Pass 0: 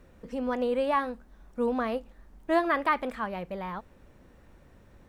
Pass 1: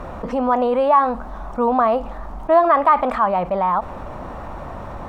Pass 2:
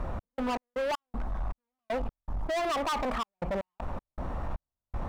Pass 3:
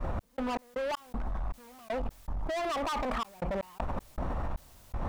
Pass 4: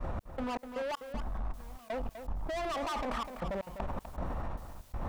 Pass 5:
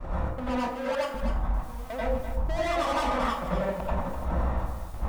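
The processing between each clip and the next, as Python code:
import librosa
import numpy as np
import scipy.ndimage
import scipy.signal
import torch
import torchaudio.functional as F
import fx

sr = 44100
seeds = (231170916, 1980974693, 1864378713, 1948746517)

y1 = fx.lowpass(x, sr, hz=3000.0, slope=6)
y1 = fx.band_shelf(y1, sr, hz=890.0, db=12.0, octaves=1.3)
y1 = fx.env_flatten(y1, sr, amount_pct=50)
y2 = fx.low_shelf(y1, sr, hz=130.0, db=11.0)
y2 = np.clip(y2, -10.0 ** (-21.0 / 20.0), 10.0 ** (-21.0 / 20.0))
y2 = fx.step_gate(y2, sr, bpm=79, pattern='x.x.x.xx..x.xxxx', floor_db=-60.0, edge_ms=4.5)
y2 = F.gain(torch.from_numpy(y2), -7.0).numpy()
y3 = fx.fade_in_head(y2, sr, length_s=1.23)
y3 = fx.env_flatten(y3, sr, amount_pct=100)
y3 = F.gain(torch.from_numpy(y3), -3.5).numpy()
y4 = y3 + 10.0 ** (-9.5 / 20.0) * np.pad(y3, (int(250 * sr / 1000.0), 0))[:len(y3)]
y4 = F.gain(torch.from_numpy(y4), -3.0).numpy()
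y5 = fx.rev_plate(y4, sr, seeds[0], rt60_s=0.54, hf_ratio=0.6, predelay_ms=75, drr_db=-7.5)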